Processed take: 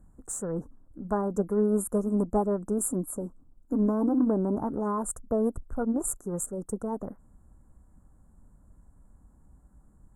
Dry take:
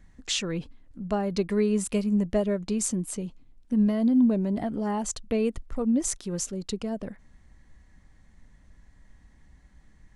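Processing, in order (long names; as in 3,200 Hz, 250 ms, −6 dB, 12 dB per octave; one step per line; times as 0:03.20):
formants moved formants +3 semitones
harmonic generator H 7 −37 dB, 8 −37 dB, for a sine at −12 dBFS
elliptic band-stop filter 1,400–7,500 Hz, stop band 40 dB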